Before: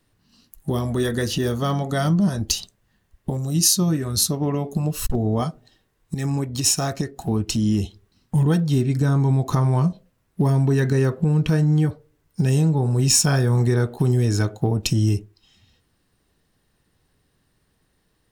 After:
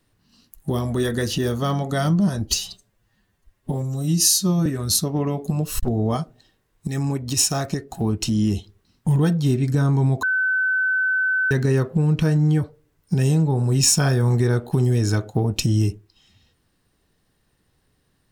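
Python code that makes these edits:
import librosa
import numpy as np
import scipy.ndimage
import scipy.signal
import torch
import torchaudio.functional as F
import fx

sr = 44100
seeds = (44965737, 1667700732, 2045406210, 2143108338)

y = fx.edit(x, sr, fx.stretch_span(start_s=2.47, length_s=1.46, factor=1.5),
    fx.bleep(start_s=9.5, length_s=1.28, hz=1520.0, db=-17.5), tone=tone)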